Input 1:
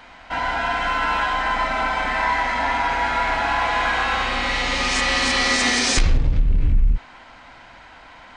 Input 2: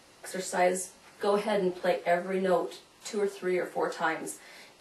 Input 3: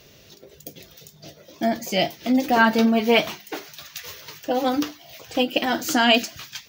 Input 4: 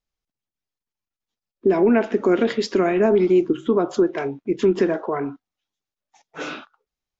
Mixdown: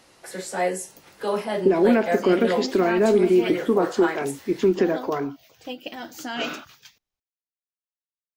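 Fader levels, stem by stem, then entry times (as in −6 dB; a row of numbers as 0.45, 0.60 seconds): muted, +1.5 dB, −13.0 dB, −1.5 dB; muted, 0.00 s, 0.30 s, 0.00 s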